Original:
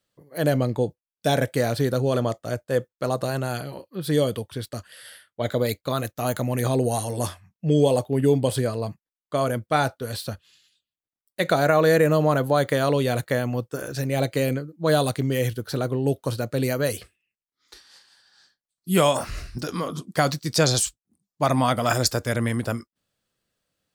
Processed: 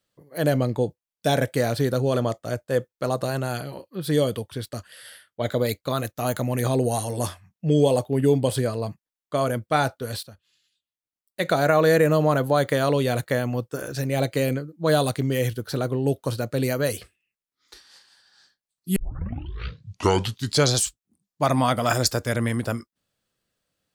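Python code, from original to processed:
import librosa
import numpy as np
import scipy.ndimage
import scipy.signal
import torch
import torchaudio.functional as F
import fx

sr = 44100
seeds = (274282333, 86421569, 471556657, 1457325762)

y = fx.edit(x, sr, fx.fade_in_from(start_s=10.23, length_s=1.49, floor_db=-16.0),
    fx.tape_start(start_s=18.96, length_s=1.78), tone=tone)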